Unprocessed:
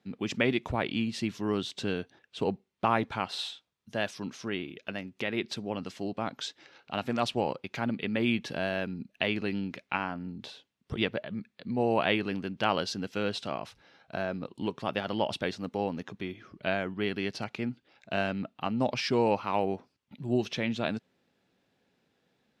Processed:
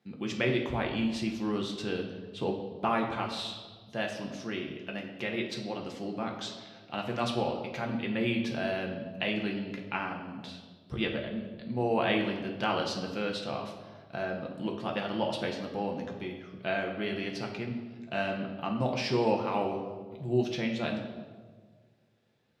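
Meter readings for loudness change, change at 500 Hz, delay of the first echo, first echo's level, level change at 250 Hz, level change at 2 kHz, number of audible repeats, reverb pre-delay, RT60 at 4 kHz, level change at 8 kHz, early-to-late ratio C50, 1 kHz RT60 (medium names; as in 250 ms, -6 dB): -1.0 dB, -0.5 dB, no echo, no echo, -0.5 dB, -1.5 dB, no echo, 6 ms, 1.1 s, -2.0 dB, 6.5 dB, 1.3 s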